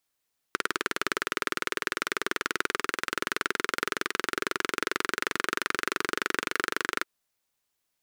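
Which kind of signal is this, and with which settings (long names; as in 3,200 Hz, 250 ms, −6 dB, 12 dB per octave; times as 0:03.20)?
pulse-train model of a single-cylinder engine, changing speed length 6.49 s, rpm 2,300, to 2,900, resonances 390/1,400 Hz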